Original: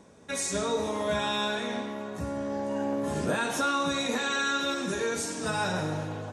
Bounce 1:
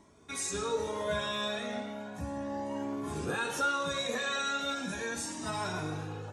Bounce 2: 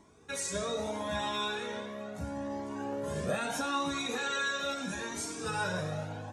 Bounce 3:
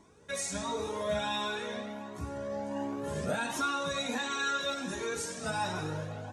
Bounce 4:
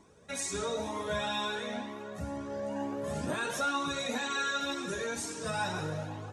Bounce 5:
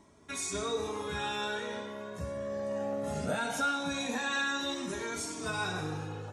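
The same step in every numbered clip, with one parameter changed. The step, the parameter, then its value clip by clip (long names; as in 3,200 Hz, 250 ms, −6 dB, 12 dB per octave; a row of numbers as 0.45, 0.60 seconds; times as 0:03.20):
flanger whose copies keep moving one way, speed: 0.36, 0.77, 1.4, 2.1, 0.2 Hertz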